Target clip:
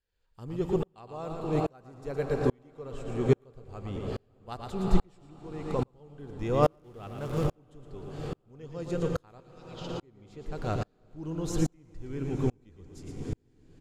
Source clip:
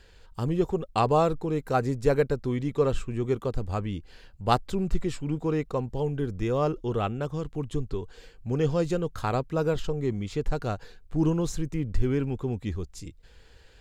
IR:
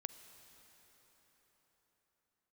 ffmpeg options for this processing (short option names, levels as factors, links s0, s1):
-filter_complex "[0:a]asettb=1/sr,asplit=3[s0][s1][s2];[s0]atrim=end=6.634[s3];[s1]atrim=start=6.63:end=7.53,asetpts=PTS-STARTPTS,afade=t=in:d=0.004:c=qsin,afade=t=out:st=0.896:d=0.004:c=qsin,aeval=exprs='val(0)+0.5*0.0178*sgn(val(0))':c=same[s4];[s2]atrim=start=7.526[s5];[s3][s4]acrossfade=d=0.004:c1=hsin:c2=qsin[s6];[s6][s5]acrossfade=d=0.004:c1=qsin:c2=hsin,aecho=1:1:115:0.376,asettb=1/sr,asplit=3[s7][s8][s9];[s7]atrim=end=5.224[s10];[s8]atrim=start=5.22:end=5.79,asetpts=PTS-STARTPTS,afade=t=in:d=0.004:c=qsin,afade=t=out:st=0.566:d=0.004:c=qsin,acompressor=threshold=0.0398:ratio=6[s11];[s9]atrim=start=5.786[s12];[s10][s11]acrossfade=d=0.004:c1=hsin:c2=qsin[s13];[s13][s12]acrossfade=d=0.004:c1=qsin:c2=hsin,asettb=1/sr,asplit=3[s14][s15][s16];[s14]atrim=end=9.404[s17];[s15]atrim=start=9.4:end=10.03,asetpts=PTS-STARTPTS,afade=t=in:d=0.004:c=qsin,afade=t=out:st=0.626:d=0.004:c=qsin,asuperpass=centerf=3900:order=4:qfactor=1.1[s18];[s16]atrim=start=10.026[s19];[s17][s18]acrossfade=d=0.004:c1=hsin:c2=qsin[s20];[s20][s19]acrossfade=d=0.004:c1=qsin:c2=hsin[s21];[1:a]atrim=start_sample=2205,asetrate=26019,aresample=44100[s22];[s21][s22]afir=irnorm=-1:irlink=0,aeval=exprs='val(0)*pow(10,-39*if(lt(mod(-1.2*n/s,1),2*abs(-1.2)/1000),1-mod(-1.2*n/s,1)/(2*abs(-1.2)/1000),(mod(-1.2*n/s,1)-2*abs(-1.2)/1000)/(1-2*abs(-1.2)/1000))/20)':c=same,volume=1.88"